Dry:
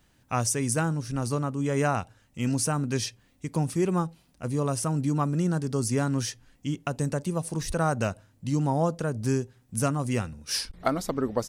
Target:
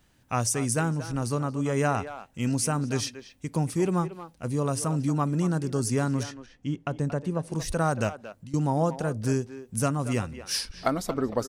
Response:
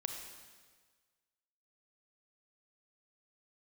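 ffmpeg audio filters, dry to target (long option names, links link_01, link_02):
-filter_complex "[0:a]asettb=1/sr,asplit=3[link_01][link_02][link_03];[link_01]atrim=end=6.234[link_04];[link_02]atrim=start=6.23:end=7.52,asetpts=PTS-STARTPTS,afade=type=in:duration=0.004:curve=qsin,afade=type=out:start_time=1.286:duration=0.004:curve=qsin,aemphasis=mode=reproduction:type=75kf[link_05];[link_03]atrim=start=7.516[link_06];[link_04][link_05]acrossfade=duration=0.004:curve1=hsin:curve2=qsin[link_07];[link_07][link_06]acrossfade=duration=0.004:curve1=qsin:curve2=hsin,asettb=1/sr,asplit=3[link_08][link_09][link_10];[link_08]atrim=end=8.094[link_11];[link_09]atrim=start=8.09:end=8.54,asetpts=PTS-STARTPTS,afade=type=in:duration=0.004:curve=qsin,afade=type=out:start_time=0.446:duration=0.004:curve=qsin,acompressor=threshold=-43dB:ratio=5[link_12];[link_10]atrim=start=8.536[link_13];[link_11][link_12]acrossfade=duration=0.004:curve1=hsin:curve2=qsin[link_14];[link_14][link_13]acrossfade=duration=0.004:curve1=qsin:curve2=hsin,asplit=2[link_15][link_16];[link_16]adelay=230,highpass=300,lowpass=3400,asoftclip=type=hard:threshold=-19dB,volume=-11dB[link_17];[link_15][link_17]amix=inputs=2:normalize=0"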